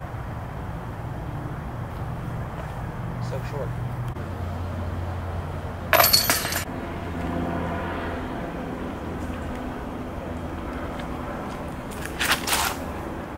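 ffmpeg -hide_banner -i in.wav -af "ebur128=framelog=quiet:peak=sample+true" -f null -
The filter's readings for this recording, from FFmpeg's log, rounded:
Integrated loudness:
  I:         -27.2 LUFS
  Threshold: -37.2 LUFS
Loudness range:
  LRA:         9.3 LU
  Threshold: -47.0 LUFS
  LRA low:   -32.3 LUFS
  LRA high:  -23.0 LUFS
Sample peak:
  Peak:       -1.3 dBFS
True peak:
  Peak:       -0.6 dBFS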